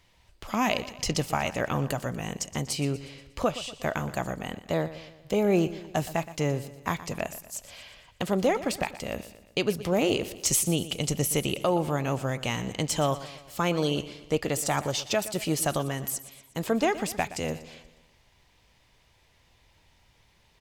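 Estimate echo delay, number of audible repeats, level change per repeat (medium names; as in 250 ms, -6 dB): 120 ms, 4, -6.0 dB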